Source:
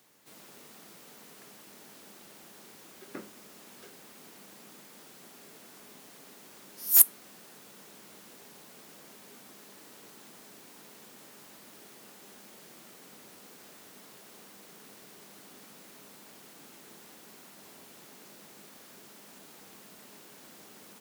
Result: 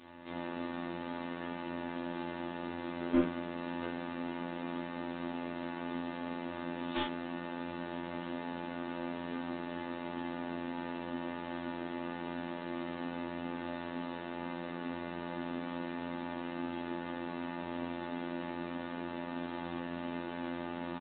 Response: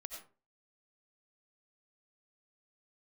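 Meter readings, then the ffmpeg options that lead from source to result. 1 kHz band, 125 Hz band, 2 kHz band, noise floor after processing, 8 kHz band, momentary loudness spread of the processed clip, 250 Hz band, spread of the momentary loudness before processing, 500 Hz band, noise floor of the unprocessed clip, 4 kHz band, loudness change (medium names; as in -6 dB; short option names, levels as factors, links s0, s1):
+14.5 dB, no reading, +10.0 dB, -42 dBFS, under -40 dB, 2 LU, +19.0 dB, 12 LU, +14.0 dB, -53 dBFS, +1.0 dB, -17.0 dB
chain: -af "lowshelf=f=450:g=7,aecho=1:1:3.4:0.94,asoftclip=type=tanh:threshold=0.668,afftfilt=real='hypot(re,im)*cos(PI*b)':imag='0':win_size=2048:overlap=0.75,aresample=11025,asoftclip=type=hard:threshold=0.0237,aresample=44100,aecho=1:1:35|57:0.631|0.422,volume=3.35" -ar 8000 -c:a pcm_alaw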